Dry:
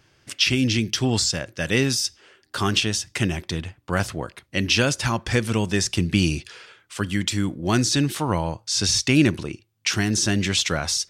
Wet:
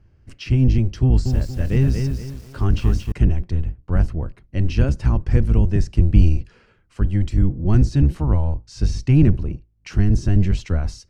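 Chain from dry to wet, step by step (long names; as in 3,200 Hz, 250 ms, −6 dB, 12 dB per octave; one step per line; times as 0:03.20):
sub-octave generator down 1 octave, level +1 dB
spectral tilt −4 dB per octave
notch filter 3,500 Hz, Q 7.5
0:01.02–0:03.12: feedback echo at a low word length 232 ms, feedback 35%, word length 6 bits, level −5.5 dB
level −8.5 dB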